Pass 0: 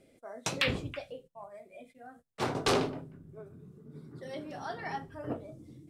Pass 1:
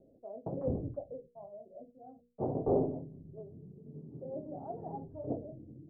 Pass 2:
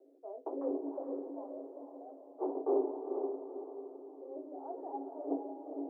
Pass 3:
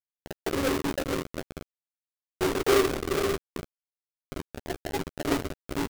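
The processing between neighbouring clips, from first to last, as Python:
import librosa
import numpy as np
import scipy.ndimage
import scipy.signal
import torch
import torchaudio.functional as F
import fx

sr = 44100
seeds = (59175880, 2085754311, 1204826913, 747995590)

y1 = scipy.signal.sosfilt(scipy.signal.butter(6, 720.0, 'lowpass', fs=sr, output='sos'), x)
y1 = fx.hum_notches(y1, sr, base_hz=60, count=8)
y1 = y1 * librosa.db_to_amplitude(1.0)
y2 = scipy.signal.sosfilt(scipy.signal.cheby1(6, 9, 270.0, 'highpass', fs=sr, output='sos'), y1)
y2 = fx.rider(y2, sr, range_db=4, speed_s=2.0)
y2 = fx.echo_diffused(y2, sr, ms=466, feedback_pct=45, wet_db=-5)
y2 = y2 * librosa.db_to_amplitude(3.5)
y3 = fx.halfwave_hold(y2, sr)
y3 = fx.quant_dither(y3, sr, seeds[0], bits=6, dither='none')
y3 = fx.doubler(y3, sr, ms=13.0, db=-11.5)
y3 = y3 * librosa.db_to_amplitude(5.0)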